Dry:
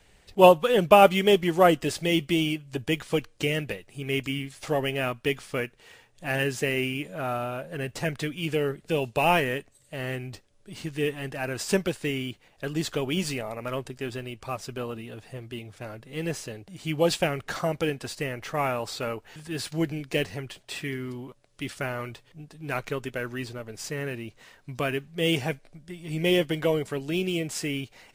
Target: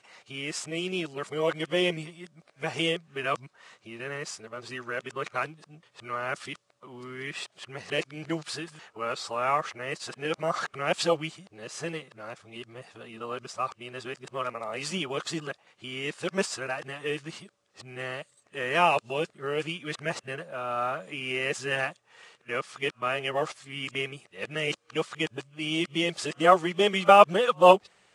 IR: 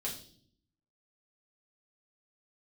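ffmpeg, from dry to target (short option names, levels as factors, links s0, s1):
-af "areverse,highpass=210,equalizer=f=270:t=q:w=4:g=-9,equalizer=f=420:t=q:w=4:g=-3,equalizer=f=1200:t=q:w=4:g=8,lowpass=f=9000:w=0.5412,lowpass=f=9000:w=1.3066,volume=0.891"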